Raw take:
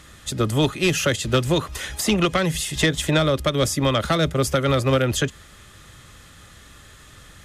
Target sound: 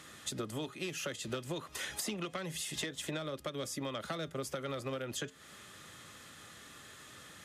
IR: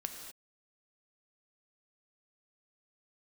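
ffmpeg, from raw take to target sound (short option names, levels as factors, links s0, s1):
-af "highpass=170,acompressor=threshold=0.0282:ratio=12,flanger=delay=2.6:depth=3.3:regen=-89:speed=0.3:shape=sinusoidal"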